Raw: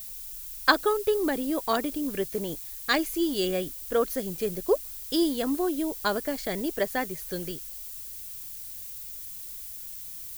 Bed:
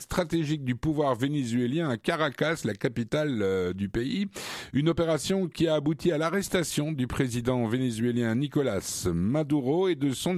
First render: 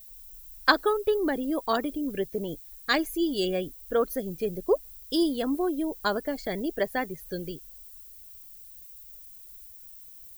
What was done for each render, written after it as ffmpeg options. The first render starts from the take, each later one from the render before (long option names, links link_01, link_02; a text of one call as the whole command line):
ffmpeg -i in.wav -af "afftdn=noise_reduction=13:noise_floor=-40" out.wav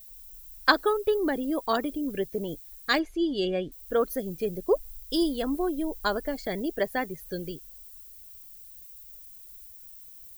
ffmpeg -i in.wav -filter_complex "[0:a]asettb=1/sr,asplit=3[link_01][link_02][link_03];[link_01]atrim=end=2.994[link_04];[link_02]atrim=start=2.99:end=3.72,asetpts=PTS-STARTPTS,afade=type=in:duration=0.004:curve=qsin,afade=type=out:start_time=0.726:duration=0.004:curve=qsin,lowpass=4100[link_05];[link_03]atrim=start=3.716[link_06];[link_04][link_05]acrossfade=duration=0.004:curve1=hsin:curve2=qsin[link_07];[link_07][link_06]acrossfade=duration=0.004:curve1=qsin:curve2=hsin,asplit=3[link_08][link_09][link_10];[link_08]afade=type=out:start_time=4.74:duration=0.02[link_11];[link_09]asubboost=boost=3.5:cutoff=66,afade=type=in:start_time=4.74:duration=0.02,afade=type=out:start_time=6.33:duration=0.02[link_12];[link_10]afade=type=in:start_time=6.33:duration=0.02[link_13];[link_11][link_12][link_13]amix=inputs=3:normalize=0" out.wav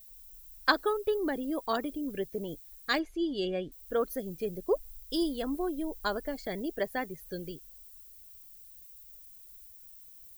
ffmpeg -i in.wav -af "volume=-4.5dB" out.wav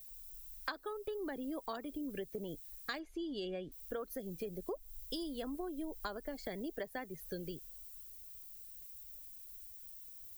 ffmpeg -i in.wav -filter_complex "[0:a]acrossover=split=130|450|3600[link_01][link_02][link_03][link_04];[link_02]alimiter=level_in=7.5dB:limit=-24dB:level=0:latency=1,volume=-7.5dB[link_05];[link_01][link_05][link_03][link_04]amix=inputs=4:normalize=0,acompressor=threshold=-38dB:ratio=8" out.wav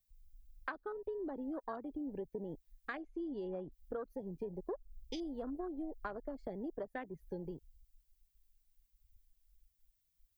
ffmpeg -i in.wav -af "afwtdn=0.00562,lowpass=frequency=3300:poles=1" out.wav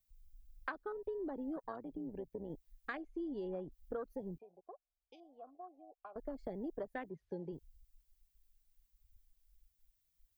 ffmpeg -i in.wav -filter_complex "[0:a]asettb=1/sr,asplit=3[link_01][link_02][link_03];[link_01]atrim=end=1.564[link_04];[link_02]atrim=start=1.56:end=2.5,asetpts=PTS-STARTPTS,afade=type=in:duration=0.004:curve=qsin,afade=type=out:start_time=0.936:duration=0.004:curve=qsin,tremolo=f=120:d=0.571[link_05];[link_03]atrim=start=2.496[link_06];[link_04][link_05]acrossfade=duration=0.004:curve1=hsin:curve2=qsin[link_07];[link_07][link_06]acrossfade=duration=0.004:curve1=qsin:curve2=hsin,asettb=1/sr,asplit=3[link_08][link_09][link_10];[link_08]atrim=end=4.384[link_11];[link_09]atrim=start=4.38:end=6.16,asetpts=PTS-STARTPTS,afade=type=in:duration=0.004:curve=qsin,afade=type=out:start_time=1.776:duration=0.004:curve=qsin,asplit=3[link_12][link_13][link_14];[link_12]bandpass=frequency=730:width_type=q:width=8,volume=0dB[link_15];[link_13]bandpass=frequency=1090:width_type=q:width=8,volume=-6dB[link_16];[link_14]bandpass=frequency=2440:width_type=q:width=8,volume=-9dB[link_17];[link_15][link_16][link_17]amix=inputs=3:normalize=0[link_18];[link_10]atrim=start=6.156[link_19];[link_11][link_18]acrossfade=duration=0.004:curve1=hsin:curve2=qsin[link_20];[link_20][link_19]acrossfade=duration=0.004:curve1=qsin:curve2=hsin,asplit=3[link_21][link_22][link_23];[link_21]afade=type=out:start_time=7.09:duration=0.02[link_24];[link_22]highpass=130,lowpass=4800,afade=type=in:start_time=7.09:duration=0.02,afade=type=out:start_time=7.52:duration=0.02[link_25];[link_23]afade=type=in:start_time=7.52:duration=0.02[link_26];[link_24][link_25][link_26]amix=inputs=3:normalize=0" out.wav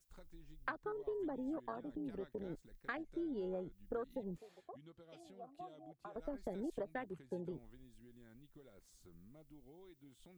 ffmpeg -i in.wav -i bed.wav -filter_complex "[1:a]volume=-35dB[link_01];[0:a][link_01]amix=inputs=2:normalize=0" out.wav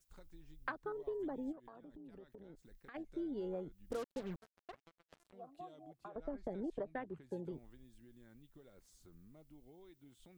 ffmpeg -i in.wav -filter_complex "[0:a]asplit=3[link_01][link_02][link_03];[link_01]afade=type=out:start_time=1.51:duration=0.02[link_04];[link_02]acompressor=threshold=-53dB:ratio=4:attack=3.2:release=140:knee=1:detection=peak,afade=type=in:start_time=1.51:duration=0.02,afade=type=out:start_time=2.94:duration=0.02[link_05];[link_03]afade=type=in:start_time=2.94:duration=0.02[link_06];[link_04][link_05][link_06]amix=inputs=3:normalize=0,asettb=1/sr,asplit=3[link_07][link_08][link_09];[link_07]atrim=end=3.904[link_10];[link_08]atrim=start=3.9:end=5.33,asetpts=PTS-STARTPTS,afade=type=in:duration=0.004:curve=qsin,afade=type=out:start_time=1.426:duration=0.004:curve=qsin,acrusher=bits=7:mix=0:aa=0.5[link_11];[link_09]atrim=start=5.326[link_12];[link_10][link_11]acrossfade=duration=0.004:curve1=hsin:curve2=qsin[link_13];[link_13][link_12]acrossfade=duration=0.004:curve1=qsin:curve2=hsin,asettb=1/sr,asplit=3[link_14][link_15][link_16];[link_14]atrim=end=6.084[link_17];[link_15]atrim=start=6.08:end=7.22,asetpts=PTS-STARTPTS,afade=type=in:duration=0.004:curve=qsin,afade=type=out:start_time=1.136:duration=0.004:curve=qsin,aemphasis=mode=reproduction:type=75fm[link_18];[link_16]atrim=start=7.216[link_19];[link_17][link_18]acrossfade=duration=0.004:curve1=hsin:curve2=qsin[link_20];[link_20][link_19]acrossfade=duration=0.004:curve1=qsin:curve2=hsin" out.wav